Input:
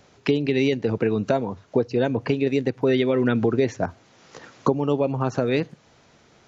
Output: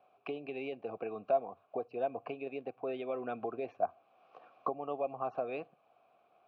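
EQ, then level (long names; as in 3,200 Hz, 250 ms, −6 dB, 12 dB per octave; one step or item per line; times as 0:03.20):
formant filter a
high-frequency loss of the air 240 metres
0.0 dB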